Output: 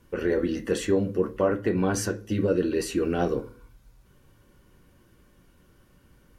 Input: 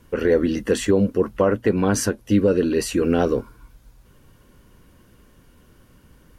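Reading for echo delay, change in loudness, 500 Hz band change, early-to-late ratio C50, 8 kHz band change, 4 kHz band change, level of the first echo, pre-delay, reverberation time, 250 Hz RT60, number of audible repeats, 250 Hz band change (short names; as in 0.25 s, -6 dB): none, -6.0 dB, -5.5 dB, 16.5 dB, -6.0 dB, -5.5 dB, none, 3 ms, 0.40 s, 0.50 s, none, -6.0 dB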